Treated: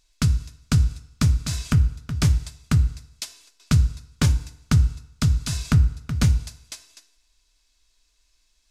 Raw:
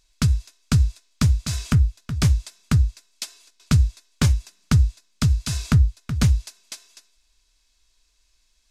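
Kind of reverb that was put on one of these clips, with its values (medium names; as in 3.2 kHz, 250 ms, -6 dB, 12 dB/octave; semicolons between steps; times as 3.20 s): FDN reverb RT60 0.81 s, low-frequency decay 0.8×, high-frequency decay 0.8×, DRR 11.5 dB; trim -1 dB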